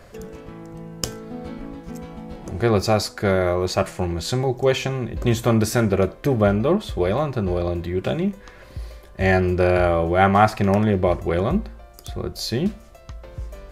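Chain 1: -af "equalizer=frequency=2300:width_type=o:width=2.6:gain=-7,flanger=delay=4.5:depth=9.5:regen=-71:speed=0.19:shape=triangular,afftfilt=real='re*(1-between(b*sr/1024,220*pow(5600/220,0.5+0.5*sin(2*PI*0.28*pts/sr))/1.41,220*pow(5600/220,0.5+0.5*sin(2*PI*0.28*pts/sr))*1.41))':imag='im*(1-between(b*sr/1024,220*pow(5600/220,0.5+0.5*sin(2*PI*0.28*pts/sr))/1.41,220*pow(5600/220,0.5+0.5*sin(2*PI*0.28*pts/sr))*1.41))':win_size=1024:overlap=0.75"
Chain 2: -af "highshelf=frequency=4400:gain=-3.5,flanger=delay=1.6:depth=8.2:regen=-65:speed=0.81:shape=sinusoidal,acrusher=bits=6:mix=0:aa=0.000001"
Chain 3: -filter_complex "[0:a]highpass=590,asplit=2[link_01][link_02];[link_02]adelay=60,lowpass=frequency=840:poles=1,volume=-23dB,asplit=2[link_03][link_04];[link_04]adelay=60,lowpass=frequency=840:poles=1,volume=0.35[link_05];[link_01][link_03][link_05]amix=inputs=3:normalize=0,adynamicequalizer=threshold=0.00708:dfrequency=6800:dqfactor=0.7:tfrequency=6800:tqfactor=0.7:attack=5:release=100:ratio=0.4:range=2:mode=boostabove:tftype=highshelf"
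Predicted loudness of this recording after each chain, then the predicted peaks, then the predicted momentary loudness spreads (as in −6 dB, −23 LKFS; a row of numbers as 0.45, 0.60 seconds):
−27.5, −25.5, −25.5 LKFS; −12.0, −6.5, −2.5 dBFS; 18, 18, 21 LU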